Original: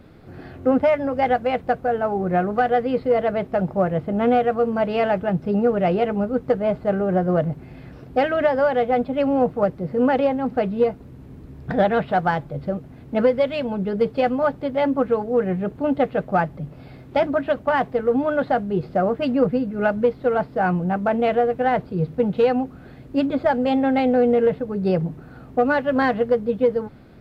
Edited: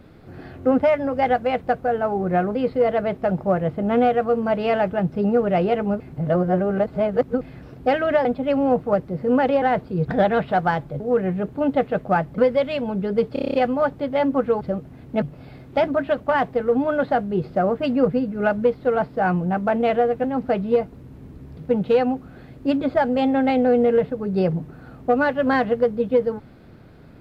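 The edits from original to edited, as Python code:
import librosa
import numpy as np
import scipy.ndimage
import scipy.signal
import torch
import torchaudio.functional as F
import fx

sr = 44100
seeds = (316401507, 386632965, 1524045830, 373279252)

y = fx.edit(x, sr, fx.cut(start_s=2.55, length_s=0.3),
    fx.reverse_span(start_s=6.3, length_s=1.41),
    fx.cut(start_s=8.55, length_s=0.4),
    fx.swap(start_s=10.32, length_s=1.33, other_s=21.63, other_length_s=0.43),
    fx.swap(start_s=12.6, length_s=0.61, other_s=15.23, other_length_s=1.38),
    fx.stutter(start_s=14.16, slice_s=0.03, count=8), tone=tone)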